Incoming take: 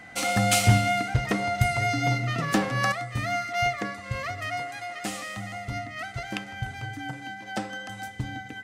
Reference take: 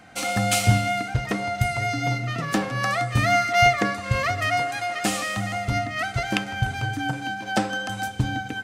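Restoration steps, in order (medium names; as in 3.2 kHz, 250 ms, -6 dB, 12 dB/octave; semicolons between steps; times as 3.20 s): clip repair -10 dBFS; band-stop 2 kHz, Q 30; gain correction +8.5 dB, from 2.92 s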